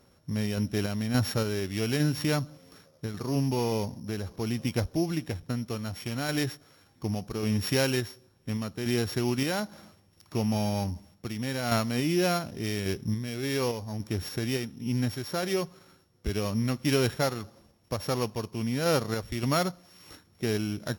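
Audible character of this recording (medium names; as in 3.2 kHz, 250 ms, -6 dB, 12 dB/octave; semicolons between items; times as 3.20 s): a buzz of ramps at a fixed pitch in blocks of 8 samples; random-step tremolo; MP3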